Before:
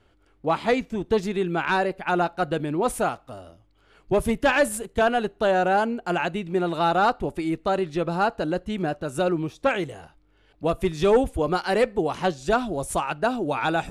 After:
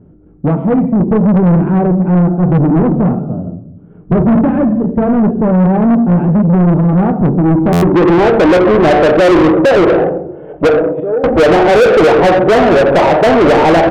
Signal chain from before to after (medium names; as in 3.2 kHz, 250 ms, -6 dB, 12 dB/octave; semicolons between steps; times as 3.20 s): rattle on loud lows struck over -36 dBFS, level -34 dBFS; 0.48–1.26 s: bass shelf 370 Hz -5 dB; 9.16–9.94 s: high-pass 130 Hz 24 dB/octave; peak limiter -16 dBFS, peak gain reduction 6.5 dB; 10.67–11.24 s: inverted gate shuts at -23 dBFS, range -28 dB; low-pass sweep 180 Hz -> 520 Hz, 7.44–8.58 s; hard clipper -11 dBFS, distortion -31 dB; resampled via 8 kHz; reverberation RT60 0.75 s, pre-delay 6 ms, DRR 6 dB; overdrive pedal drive 36 dB, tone 2.4 kHz, clips at -6 dBFS; buffer glitch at 7.72 s, samples 512, times 8; trim +5 dB